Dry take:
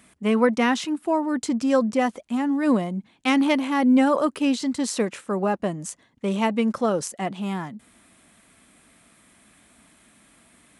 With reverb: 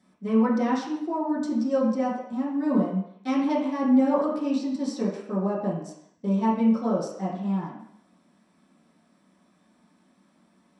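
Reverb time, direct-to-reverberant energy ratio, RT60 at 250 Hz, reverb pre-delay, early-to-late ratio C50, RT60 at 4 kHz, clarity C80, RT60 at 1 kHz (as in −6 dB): 0.70 s, −8.5 dB, 0.55 s, 3 ms, 4.0 dB, 0.70 s, 6.5 dB, 0.75 s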